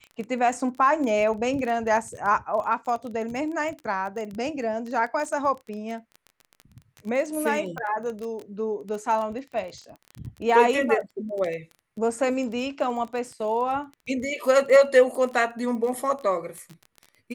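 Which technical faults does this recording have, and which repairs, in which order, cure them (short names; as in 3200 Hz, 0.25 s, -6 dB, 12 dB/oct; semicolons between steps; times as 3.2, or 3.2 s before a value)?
crackle 21/s -31 dBFS
7.78 pop -20 dBFS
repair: de-click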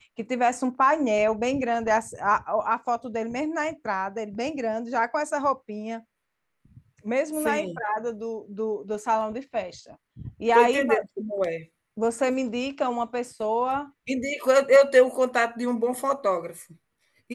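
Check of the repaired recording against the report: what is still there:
7.78 pop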